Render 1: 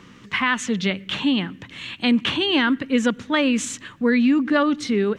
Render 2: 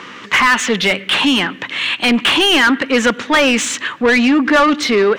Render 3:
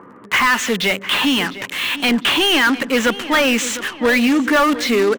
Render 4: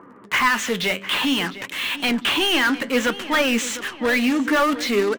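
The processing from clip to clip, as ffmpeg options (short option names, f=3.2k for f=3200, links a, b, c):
-filter_complex "[0:a]bass=f=250:g=-7,treble=f=4k:g=-3,asplit=2[a][b];[b]highpass=f=720:p=1,volume=22dB,asoftclip=type=tanh:threshold=-7dB[c];[a][c]amix=inputs=2:normalize=0,lowpass=f=3.7k:p=1,volume=-6dB,volume=3.5dB"
-filter_complex "[0:a]acrossover=split=1200[a][b];[b]acrusher=bits=3:mix=0:aa=0.5[c];[a][c]amix=inputs=2:normalize=0,asplit=2[d][e];[e]adelay=704,lowpass=f=4.4k:p=1,volume=-14dB,asplit=2[f][g];[g]adelay=704,lowpass=f=4.4k:p=1,volume=0.48,asplit=2[h][i];[i]adelay=704,lowpass=f=4.4k:p=1,volume=0.48,asplit=2[j][k];[k]adelay=704,lowpass=f=4.4k:p=1,volume=0.48,asplit=2[l][m];[m]adelay=704,lowpass=f=4.4k:p=1,volume=0.48[n];[d][f][h][j][l][n]amix=inputs=6:normalize=0,volume=-3dB"
-af "flanger=delay=2.9:depth=9.3:regen=72:speed=0.58:shape=triangular"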